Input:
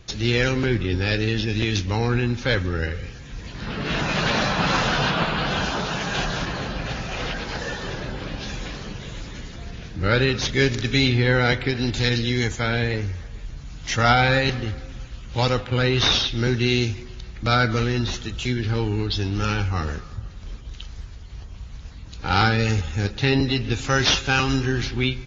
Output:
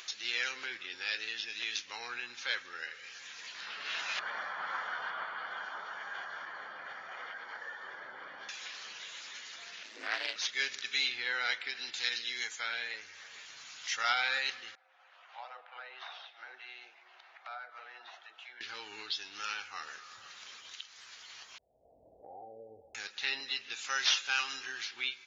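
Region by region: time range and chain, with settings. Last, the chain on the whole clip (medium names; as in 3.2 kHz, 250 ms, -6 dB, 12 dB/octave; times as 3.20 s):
4.19–8.49 s: Savitzky-Golay filter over 41 samples + tape noise reduction on one side only decoder only
9.83–10.36 s: frequency shift +180 Hz + AM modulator 110 Hz, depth 45% + loudspeaker Doppler distortion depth 0.25 ms
14.75–18.61 s: ladder band-pass 770 Hz, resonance 70% + bands offset in time highs, lows 40 ms, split 640 Hz
21.58–22.95 s: steep low-pass 690 Hz 72 dB/octave + peaking EQ 190 Hz -13 dB 2.5 oct
whole clip: high-pass 1.4 kHz 12 dB/octave; upward compressor, threshold -30 dBFS; trim -8 dB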